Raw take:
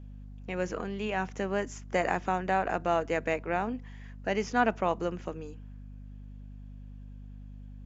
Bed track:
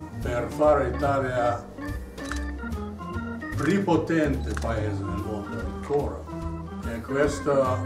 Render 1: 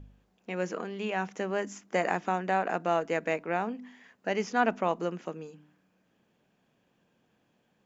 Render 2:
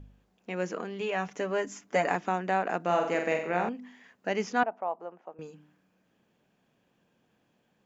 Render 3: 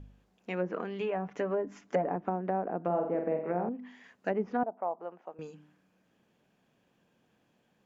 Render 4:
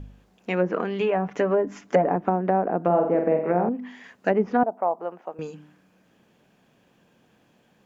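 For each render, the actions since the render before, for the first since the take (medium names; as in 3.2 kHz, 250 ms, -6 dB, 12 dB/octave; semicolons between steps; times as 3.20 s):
de-hum 50 Hz, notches 6
1.00–2.16 s: comb 7 ms, depth 56%; 2.82–3.69 s: flutter echo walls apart 7.8 m, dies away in 0.57 s; 4.63–5.39 s: band-pass filter 770 Hz, Q 2.9
low-pass that closes with the level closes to 630 Hz, closed at -25.5 dBFS
trim +9.5 dB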